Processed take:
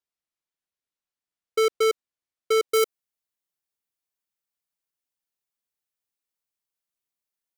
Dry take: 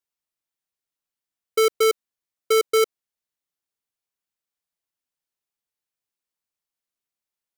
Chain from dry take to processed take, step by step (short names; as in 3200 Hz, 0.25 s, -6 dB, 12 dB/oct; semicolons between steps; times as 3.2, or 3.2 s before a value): high shelf 9700 Hz -10 dB, from 2.69 s +4.5 dB; gain -2.5 dB